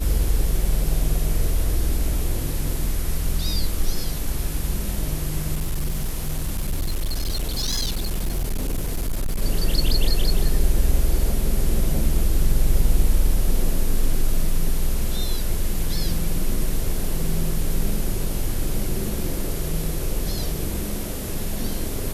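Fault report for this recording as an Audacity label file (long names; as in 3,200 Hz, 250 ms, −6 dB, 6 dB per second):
5.540000	9.420000	clipping −19.5 dBFS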